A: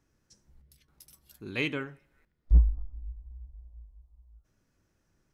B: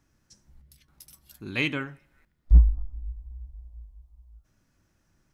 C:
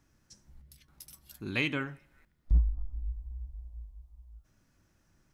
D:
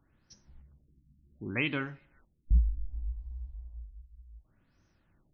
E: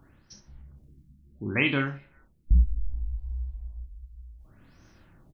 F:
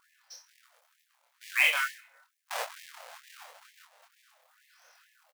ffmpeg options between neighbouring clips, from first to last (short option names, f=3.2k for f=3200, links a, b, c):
-af "equalizer=f=440:w=2.7:g=-6.5,volume=4.5dB"
-af "acompressor=threshold=-28dB:ratio=2"
-af "afftfilt=real='re*lt(b*sr/1024,280*pow(6600/280,0.5+0.5*sin(2*PI*0.67*pts/sr)))':imag='im*lt(b*sr/1024,280*pow(6600/280,0.5+0.5*sin(2*PI*0.67*pts/sr)))':win_size=1024:overlap=0.75"
-af "areverse,acompressor=mode=upward:threshold=-53dB:ratio=2.5,areverse,aecho=1:1:29|65:0.473|0.251,volume=5.5dB"
-filter_complex "[0:a]acrusher=bits=3:mode=log:mix=0:aa=0.000001,asplit=2[a][b];[b]adelay=25,volume=-2.5dB[c];[a][c]amix=inputs=2:normalize=0,afftfilt=real='re*gte(b*sr/1024,460*pow(1700/460,0.5+0.5*sin(2*PI*2.2*pts/sr)))':imag='im*gte(b*sr/1024,460*pow(1700/460,0.5+0.5*sin(2*PI*2.2*pts/sr)))':win_size=1024:overlap=0.75"